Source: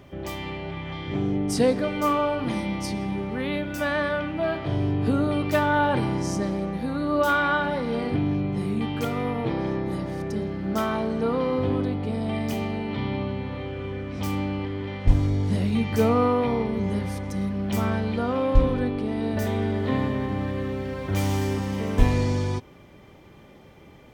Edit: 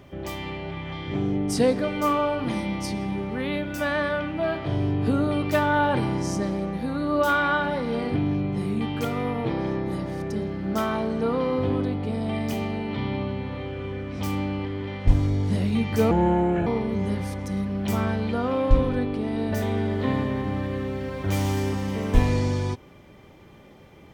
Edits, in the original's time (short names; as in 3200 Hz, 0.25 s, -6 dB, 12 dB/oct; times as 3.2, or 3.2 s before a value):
16.11–16.51 speed 72%